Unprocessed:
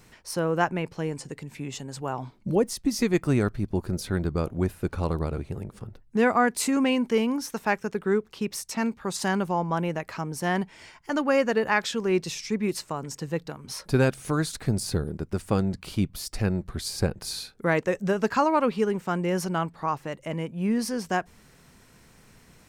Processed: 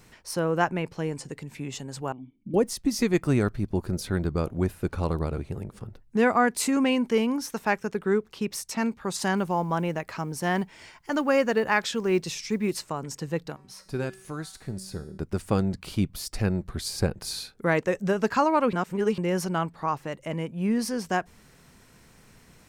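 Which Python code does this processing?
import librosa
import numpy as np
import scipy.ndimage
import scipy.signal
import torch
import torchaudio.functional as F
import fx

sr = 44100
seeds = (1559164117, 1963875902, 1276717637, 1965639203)

y = fx.formant_cascade(x, sr, vowel='i', at=(2.12, 2.54))
y = fx.quant_companded(y, sr, bits=8, at=(9.37, 12.73))
y = fx.comb_fb(y, sr, f0_hz=190.0, decay_s=0.65, harmonics='all', damping=0.0, mix_pct=70, at=(13.55, 15.17), fade=0.02)
y = fx.edit(y, sr, fx.reverse_span(start_s=18.73, length_s=0.45), tone=tone)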